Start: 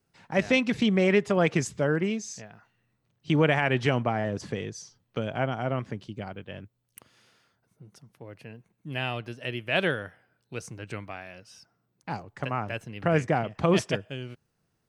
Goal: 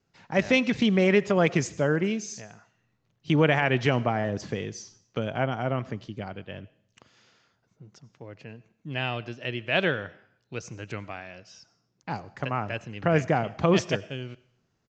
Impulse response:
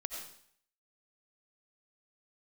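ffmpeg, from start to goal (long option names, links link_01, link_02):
-filter_complex "[0:a]asplit=2[link_01][link_02];[1:a]atrim=start_sample=2205,highshelf=frequency=7200:gain=9.5[link_03];[link_02][link_03]afir=irnorm=-1:irlink=0,volume=-15.5dB[link_04];[link_01][link_04]amix=inputs=2:normalize=0,aresample=16000,aresample=44100"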